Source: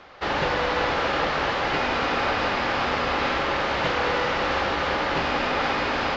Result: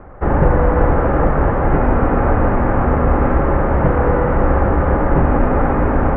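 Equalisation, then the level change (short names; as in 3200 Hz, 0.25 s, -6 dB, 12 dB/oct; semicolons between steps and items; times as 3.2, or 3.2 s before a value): LPF 1800 Hz 24 dB/oct; air absorption 61 m; tilt -4.5 dB/oct; +5.0 dB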